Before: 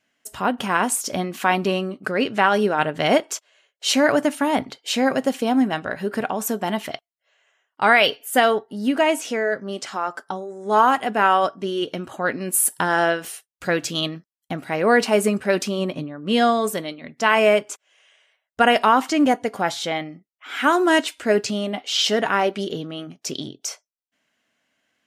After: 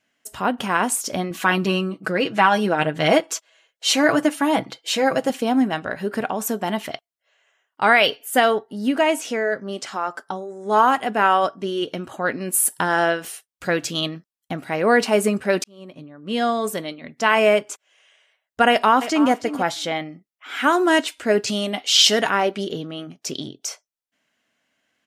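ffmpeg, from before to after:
ffmpeg -i in.wav -filter_complex "[0:a]asettb=1/sr,asplit=3[link_01][link_02][link_03];[link_01]atrim=end=1.304[link_04];[link_02]atrim=start=1.3:end=5.3,asetpts=PTS-STARTPTS,afade=type=in:duration=0.004:curve=qsin,afade=type=out:start_time=3.996:duration=0.004:curve=qsin,aecho=1:1:6.1:0.65,atrim=end_sample=176400[link_05];[link_03]atrim=start=5.296[link_06];[link_04][link_05]acrossfade=duration=0.004:curve1=hsin:curve2=qsin[link_07];[link_07][link_06]acrossfade=duration=0.004:curve1=qsin:curve2=hsin,asplit=2[link_08][link_09];[link_09]afade=type=in:start_time=18.69:duration=0.01,afade=type=out:start_time=19.3:duration=0.01,aecho=0:1:320|640:0.237137|0.0237137[link_10];[link_08][link_10]amix=inputs=2:normalize=0,asettb=1/sr,asplit=3[link_11][link_12][link_13];[link_11]atrim=end=21.474[link_14];[link_12]atrim=start=21.47:end=22.3,asetpts=PTS-STARTPTS,afade=type=in:duration=0.004:curve=qsin,afade=type=out:start_time=0.826:duration=0.004:curve=qsin,highshelf=frequency=2500:gain=9.5[link_15];[link_13]atrim=start=22.296[link_16];[link_14][link_15]acrossfade=duration=0.004:curve1=hsin:curve2=qsin[link_17];[link_17][link_16]acrossfade=duration=0.004:curve1=qsin:curve2=hsin,asplit=2[link_18][link_19];[link_18]atrim=end=15.64,asetpts=PTS-STARTPTS,afade=type=out:start_time=15.636:duration=0.004:curve=hsin[link_20];[link_19]atrim=start=15.64,asetpts=PTS-STARTPTS,afade=type=in:duration=1.23[link_21];[link_20][link_21]concat=n=2:v=0:a=1" out.wav

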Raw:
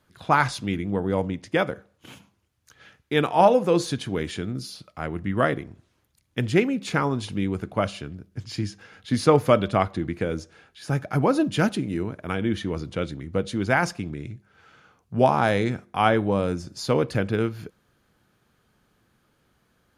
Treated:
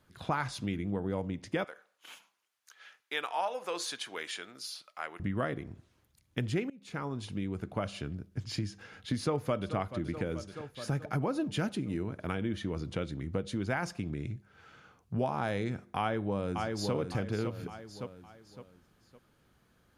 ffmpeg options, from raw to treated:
ffmpeg -i in.wav -filter_complex "[0:a]asettb=1/sr,asplit=3[link_01][link_02][link_03];[link_01]atrim=end=1.644[link_04];[link_02]atrim=start=1.64:end=5.2,asetpts=PTS-STARTPTS,afade=type=in:duration=0.004:curve=qsin,afade=type=out:start_time=3.556:duration=0.004:curve=qsin,highpass=890[link_05];[link_03]atrim=start=5.196[link_06];[link_04][link_05]acrossfade=duration=0.004:curve1=hsin:curve2=qsin[link_07];[link_07][link_06]acrossfade=duration=0.004:curve1=qsin:curve2=hsin,asplit=2[link_08][link_09];[link_09]afade=type=in:start_time=9.18:duration=0.01,afade=type=out:start_time=9.75:duration=0.01,aecho=0:1:430|860|1290|1720|2150|2580|3010:0.133352|0.0866789|0.0563413|0.0366218|0.0238042|0.0154727|0.0100573[link_10];[link_08][link_10]amix=inputs=2:normalize=0,asplit=2[link_11][link_12];[link_12]afade=type=in:start_time=15.99:duration=0.01,afade=type=out:start_time=16.94:duration=0.01,aecho=0:1:560|1120|1680|2240:0.446684|0.156339|0.0547187|0.0191516[link_13];[link_11][link_13]amix=inputs=2:normalize=0,asplit=2[link_14][link_15];[link_14]atrim=end=6.7,asetpts=PTS-STARTPTS,afade=type=out:start_time=6.696:duration=0.004:curve=hsin:silence=0.0749894[link_16];[link_15]atrim=start=6.7,asetpts=PTS-STARTPTS,afade=type=in:duration=1.37:silence=0.0749894[link_17];[link_16][link_17]concat=n=2:v=0:a=1,lowshelf=frequency=200:gain=3,acompressor=threshold=-29dB:ratio=3,volume=-2.5dB" out.wav

